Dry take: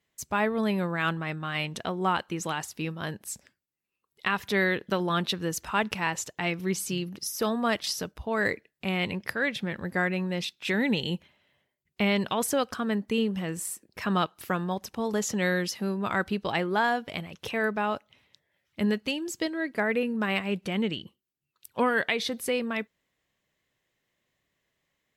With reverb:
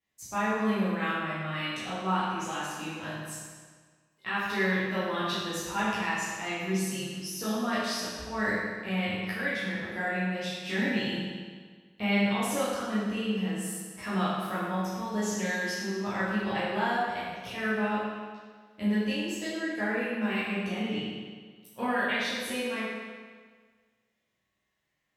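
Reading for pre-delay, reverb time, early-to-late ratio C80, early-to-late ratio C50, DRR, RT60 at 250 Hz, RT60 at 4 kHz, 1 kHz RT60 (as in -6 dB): 10 ms, 1.6 s, 0.0 dB, -2.0 dB, -11.5 dB, 1.6 s, 1.4 s, 1.6 s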